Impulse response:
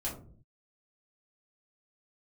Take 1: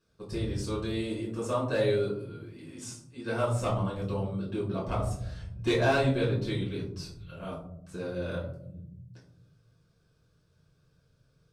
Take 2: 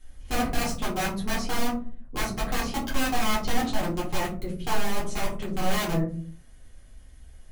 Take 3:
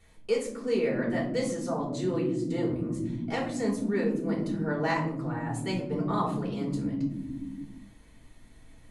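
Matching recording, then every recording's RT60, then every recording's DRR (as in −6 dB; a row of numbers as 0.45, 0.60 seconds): 2; 0.70 s, 0.45 s, non-exponential decay; −7.0, −6.5, −5.0 decibels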